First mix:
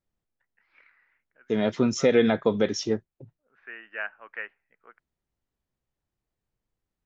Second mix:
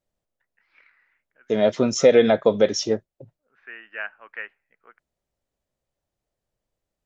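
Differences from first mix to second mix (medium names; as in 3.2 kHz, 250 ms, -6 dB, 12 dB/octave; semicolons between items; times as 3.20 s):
second voice: add peaking EQ 590 Hz +11 dB 0.63 oct; master: add treble shelf 3.8 kHz +8.5 dB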